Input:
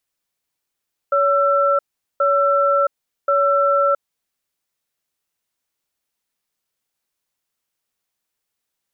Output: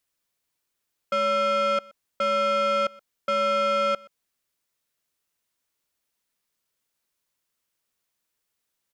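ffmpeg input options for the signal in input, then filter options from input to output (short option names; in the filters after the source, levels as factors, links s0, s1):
-f lavfi -i "aevalsrc='0.158*(sin(2*PI*564*t)+sin(2*PI*1340*t))*clip(min(mod(t,1.08),0.67-mod(t,1.08))/0.005,0,1)':d=3.21:s=44100"
-af "bandreject=f=780:w=12,asoftclip=type=tanh:threshold=0.0891,aecho=1:1:124:0.0631"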